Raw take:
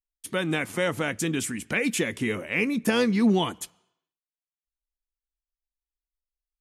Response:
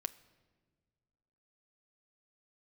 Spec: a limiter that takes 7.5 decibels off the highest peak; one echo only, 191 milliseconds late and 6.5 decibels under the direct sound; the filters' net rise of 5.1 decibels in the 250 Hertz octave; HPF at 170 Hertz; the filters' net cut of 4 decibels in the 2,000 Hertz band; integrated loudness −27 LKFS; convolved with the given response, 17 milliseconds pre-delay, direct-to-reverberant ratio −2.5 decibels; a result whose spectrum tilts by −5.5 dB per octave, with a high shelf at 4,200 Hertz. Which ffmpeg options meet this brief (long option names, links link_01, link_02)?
-filter_complex "[0:a]highpass=170,equalizer=frequency=250:width_type=o:gain=7.5,equalizer=frequency=2000:width_type=o:gain=-4,highshelf=frequency=4200:gain=-4.5,alimiter=limit=-14.5dB:level=0:latency=1,aecho=1:1:191:0.473,asplit=2[link_01][link_02];[1:a]atrim=start_sample=2205,adelay=17[link_03];[link_02][link_03]afir=irnorm=-1:irlink=0,volume=3.5dB[link_04];[link_01][link_04]amix=inputs=2:normalize=0,volume=-7dB"